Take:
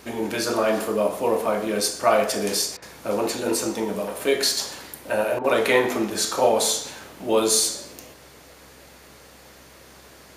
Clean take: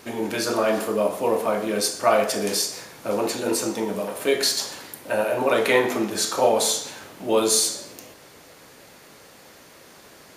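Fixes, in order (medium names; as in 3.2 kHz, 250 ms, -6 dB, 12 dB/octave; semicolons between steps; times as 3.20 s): de-hum 65.8 Hz, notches 4; interpolate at 2.77/5.39 s, 51 ms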